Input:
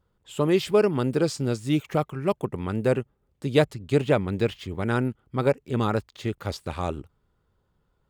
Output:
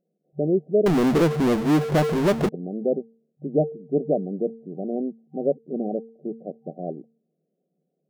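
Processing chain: de-hum 227 Hz, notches 2; FFT band-pass 150–770 Hz; 0.86–2.49 power-law curve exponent 0.35

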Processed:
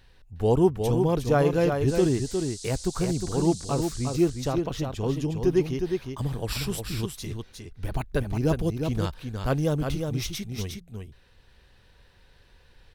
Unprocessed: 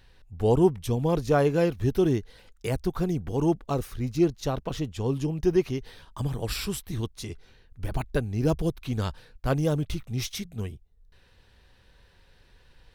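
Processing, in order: 1.87–4.15 band noise 3900–9000 Hz -43 dBFS; echo 0.359 s -5.5 dB

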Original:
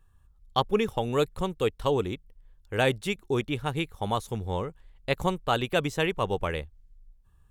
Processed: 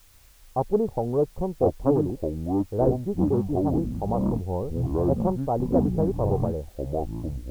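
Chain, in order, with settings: echoes that change speed 0.77 s, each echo -7 st, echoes 3; steep low-pass 850 Hz 36 dB/oct; in parallel at -9.5 dB: requantised 8-bit, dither triangular; on the sum: Doppler distortion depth 0.25 ms

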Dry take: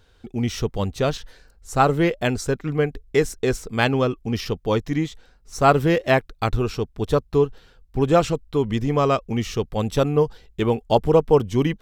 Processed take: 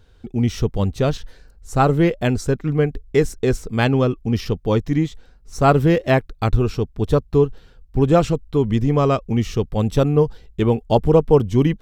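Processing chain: low shelf 390 Hz +8 dB; gain -1.5 dB

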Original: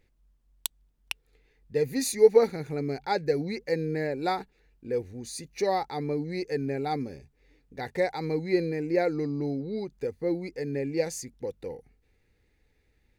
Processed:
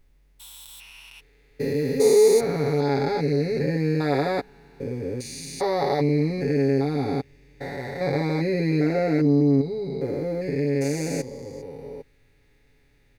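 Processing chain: stepped spectrum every 0.4 s; notch 7300 Hz, Q 23; comb 7.2 ms, depth 76%; gain +8 dB

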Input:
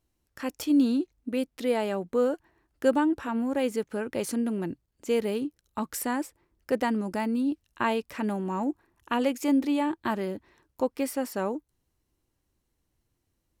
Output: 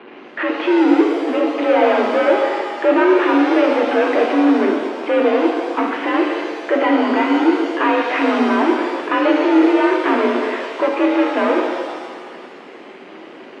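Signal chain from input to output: power-law curve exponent 0.35; mistuned SSB +52 Hz 210–2800 Hz; shimmer reverb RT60 1.6 s, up +7 st, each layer -8 dB, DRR 0.5 dB; gain +1.5 dB

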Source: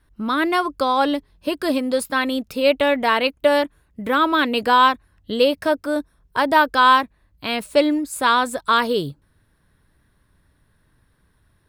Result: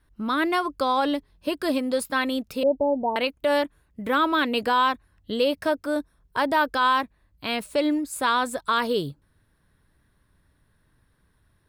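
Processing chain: 2.63–3.16 Chebyshev low-pass 930 Hz, order 6; limiter -9.5 dBFS, peak gain reduction 5.5 dB; gain -3.5 dB

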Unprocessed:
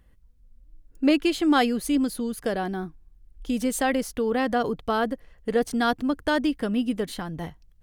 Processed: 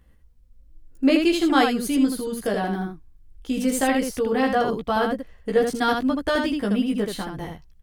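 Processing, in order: early reflections 15 ms -3 dB, 79 ms -4 dB

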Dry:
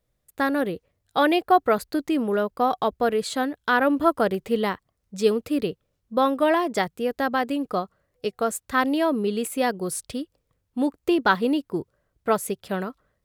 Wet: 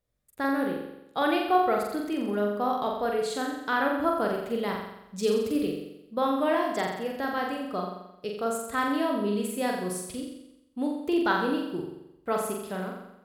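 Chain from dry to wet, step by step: 4.68–5.65 tone controls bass +5 dB, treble +5 dB; flutter echo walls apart 7.5 m, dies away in 0.86 s; gain -7.5 dB; AAC 192 kbps 48000 Hz

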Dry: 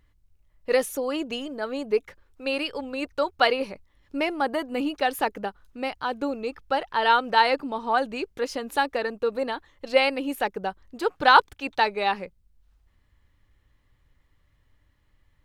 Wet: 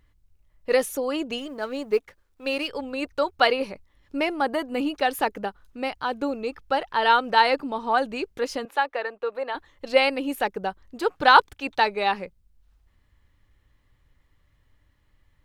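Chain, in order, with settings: 1.38–2.68 G.711 law mismatch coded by A; 8.65–9.55 three-band isolator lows -20 dB, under 440 Hz, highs -13 dB, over 3300 Hz; gain +1 dB

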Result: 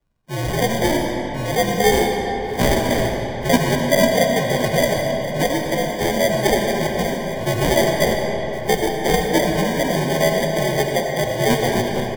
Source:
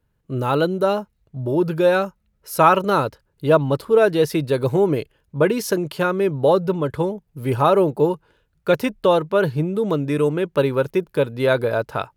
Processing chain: pitch shift by moving bins +8.5 st; sample-and-hold 32×; frequency shift -79 Hz; echo 1.066 s -14.5 dB; reverb RT60 3.9 s, pre-delay 40 ms, DRR 1.5 dB; gain +1 dB

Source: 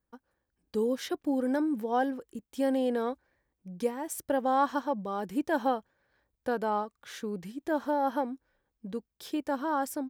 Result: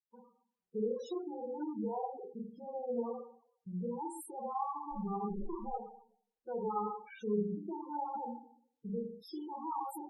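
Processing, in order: 4.91–5.68 minimum comb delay 5.2 ms; gate -49 dBFS, range -21 dB; compressor 8:1, threshold -28 dBFS, peak gain reduction 7.5 dB; limiter -28 dBFS, peak gain reduction 8 dB; 6.51–7.16 synth low-pass 2300 Hz, resonance Q 10; fixed phaser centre 400 Hz, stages 8; Schroeder reverb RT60 0.62 s, combs from 30 ms, DRR -2.5 dB; loudest bins only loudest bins 8; gain -1 dB; Opus 128 kbps 48000 Hz

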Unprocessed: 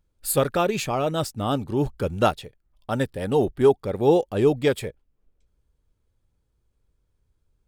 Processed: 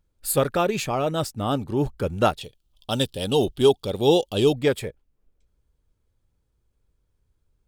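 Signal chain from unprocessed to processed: 2.41–4.55 resonant high shelf 2500 Hz +8.5 dB, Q 3

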